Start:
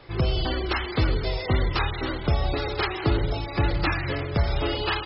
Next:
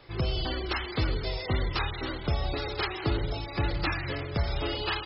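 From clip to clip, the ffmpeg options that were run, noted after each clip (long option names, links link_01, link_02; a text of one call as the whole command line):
ffmpeg -i in.wav -af "highshelf=frequency=3800:gain=6,volume=-5.5dB" out.wav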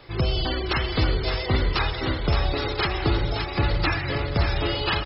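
ffmpeg -i in.wav -af "aecho=1:1:569|1138|1707|2276:0.447|0.138|0.0429|0.0133,volume=5.5dB" out.wav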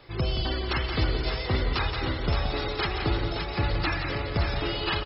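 ffmpeg -i in.wav -af "aecho=1:1:174:0.422,volume=-4dB" out.wav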